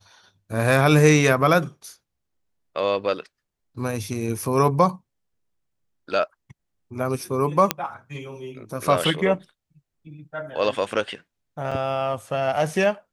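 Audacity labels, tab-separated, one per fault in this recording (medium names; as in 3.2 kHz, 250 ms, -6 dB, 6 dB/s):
7.710000	7.710000	pop -2 dBFS
11.710000	11.720000	dropout 5.5 ms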